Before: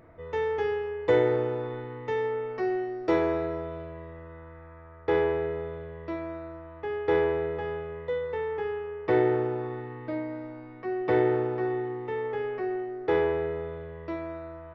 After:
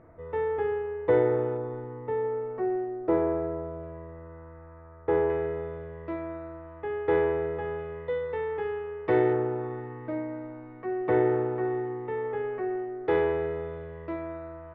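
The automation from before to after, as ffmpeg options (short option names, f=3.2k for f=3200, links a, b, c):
-af "asetnsamples=n=441:p=0,asendcmd='1.57 lowpass f 1100;3.83 lowpass f 1400;5.3 lowpass f 2300;7.79 lowpass f 3300;9.33 lowpass f 2000;13.08 lowpass f 3400;14.06 lowpass f 2400',lowpass=1.6k"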